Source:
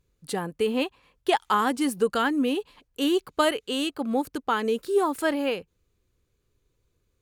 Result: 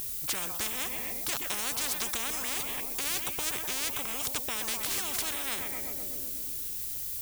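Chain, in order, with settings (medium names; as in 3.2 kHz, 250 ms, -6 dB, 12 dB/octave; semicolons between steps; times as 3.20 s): peaking EQ 1.7 kHz -5.5 dB; in parallel at +1 dB: compression, threshold -29 dBFS, peak gain reduction 11.5 dB; on the sum: formant shift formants -4 st; added noise violet -48 dBFS; on a send: filtered feedback delay 125 ms, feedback 62%, low-pass 2.1 kHz, level -18.5 dB; on the sum: spectrum-flattening compressor 10:1; trim -6.5 dB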